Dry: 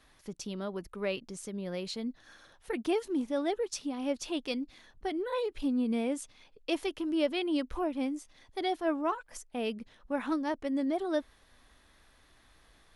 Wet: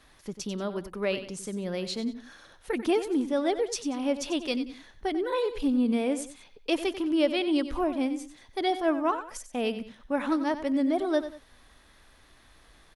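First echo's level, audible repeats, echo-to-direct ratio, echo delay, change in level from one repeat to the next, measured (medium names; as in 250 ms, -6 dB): -12.0 dB, 2, -11.5 dB, 93 ms, -9.5 dB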